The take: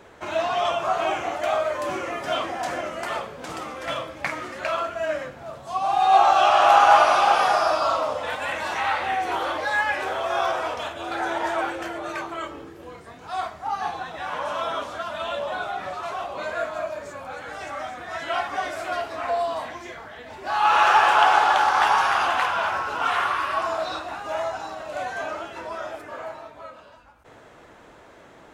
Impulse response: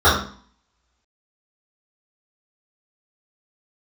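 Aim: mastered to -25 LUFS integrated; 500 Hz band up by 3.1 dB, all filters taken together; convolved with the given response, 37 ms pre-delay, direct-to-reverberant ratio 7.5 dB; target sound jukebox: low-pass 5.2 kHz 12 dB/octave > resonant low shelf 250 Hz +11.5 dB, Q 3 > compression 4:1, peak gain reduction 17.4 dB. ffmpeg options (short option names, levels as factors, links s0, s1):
-filter_complex "[0:a]equalizer=f=500:t=o:g=8,asplit=2[s0][s1];[1:a]atrim=start_sample=2205,adelay=37[s2];[s1][s2]afir=irnorm=-1:irlink=0,volume=0.0211[s3];[s0][s3]amix=inputs=2:normalize=0,lowpass=5200,lowshelf=f=250:t=q:w=3:g=11.5,acompressor=threshold=0.0355:ratio=4,volume=2.11"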